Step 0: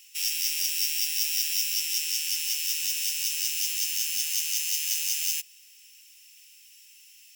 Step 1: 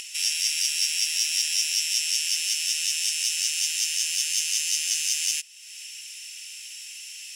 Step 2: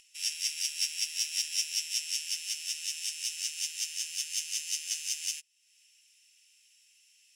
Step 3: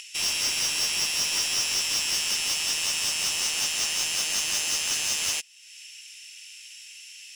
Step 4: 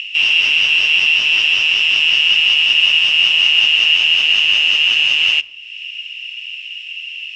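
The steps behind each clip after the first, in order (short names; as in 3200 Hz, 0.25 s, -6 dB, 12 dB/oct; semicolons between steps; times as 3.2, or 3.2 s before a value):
LPF 11000 Hz 24 dB/oct; upward compressor, threshold -33 dBFS; gain +4.5 dB
low shelf 66 Hz +12 dB; upward expander 2.5:1, over -35 dBFS; gain -4 dB
overdrive pedal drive 28 dB, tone 4900 Hz, clips at -16 dBFS
synth low-pass 2800 Hz, resonance Q 14; shoebox room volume 2900 m³, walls furnished, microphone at 0.43 m; gain +2 dB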